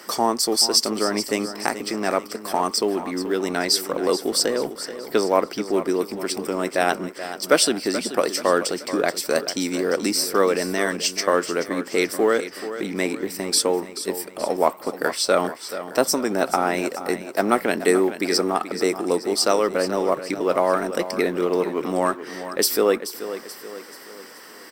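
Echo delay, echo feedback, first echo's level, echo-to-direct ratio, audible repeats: 431 ms, 46%, −12.0 dB, −11.0 dB, 4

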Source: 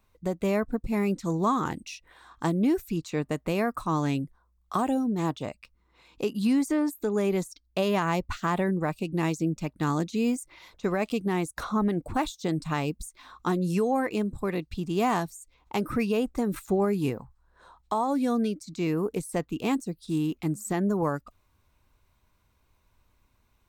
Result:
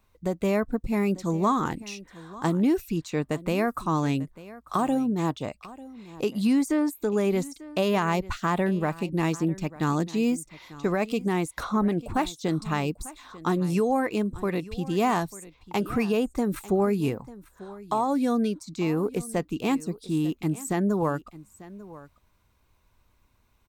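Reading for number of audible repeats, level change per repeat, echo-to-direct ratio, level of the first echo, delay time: 1, repeats not evenly spaced, −18.5 dB, −18.5 dB, 894 ms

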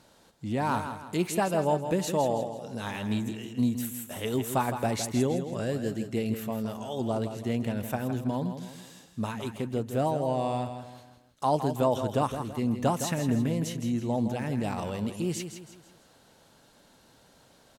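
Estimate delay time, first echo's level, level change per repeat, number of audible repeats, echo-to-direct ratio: 163 ms, −9.0 dB, −8.0 dB, 4, −8.0 dB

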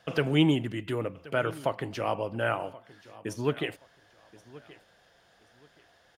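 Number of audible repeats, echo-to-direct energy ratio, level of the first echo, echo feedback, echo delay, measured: 2, −19.5 dB, −20.0 dB, 26%, 1,077 ms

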